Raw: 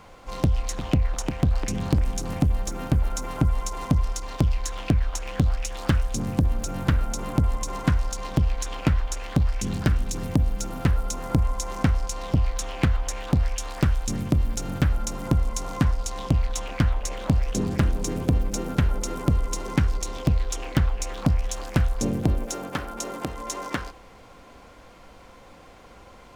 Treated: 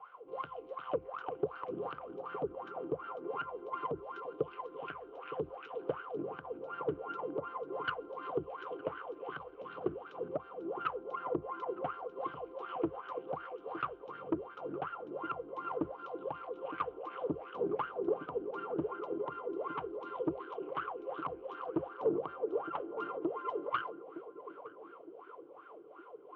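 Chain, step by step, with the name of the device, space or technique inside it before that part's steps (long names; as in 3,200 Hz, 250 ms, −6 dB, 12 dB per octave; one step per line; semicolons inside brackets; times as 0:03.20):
wah-wah guitar rig (LFO wah 2.7 Hz 320–1,500 Hz, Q 12; tube saturation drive 32 dB, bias 0.4; loudspeaker in its box 110–3,500 Hz, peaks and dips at 150 Hz +6 dB, 220 Hz −9 dB, 440 Hz +9 dB, 1,200 Hz +6 dB, 1,800 Hz −7 dB, 3,000 Hz +10 dB)
feedback echo with a band-pass in the loop 913 ms, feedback 56%, band-pass 330 Hz, level −11.5 dB
level +7 dB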